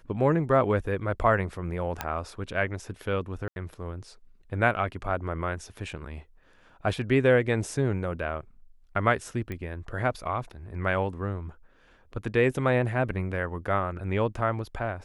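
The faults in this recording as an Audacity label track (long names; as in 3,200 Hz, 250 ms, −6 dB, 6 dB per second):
2.010000	2.010000	click −13 dBFS
3.480000	3.560000	drop-out 81 ms
9.520000	9.520000	click −22 dBFS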